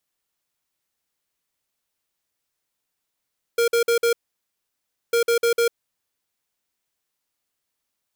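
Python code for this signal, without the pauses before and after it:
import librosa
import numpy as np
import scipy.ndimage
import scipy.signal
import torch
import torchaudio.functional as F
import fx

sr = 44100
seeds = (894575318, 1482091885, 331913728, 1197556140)

y = fx.beep_pattern(sr, wave='square', hz=468.0, on_s=0.1, off_s=0.05, beeps=4, pause_s=1.0, groups=2, level_db=-18.5)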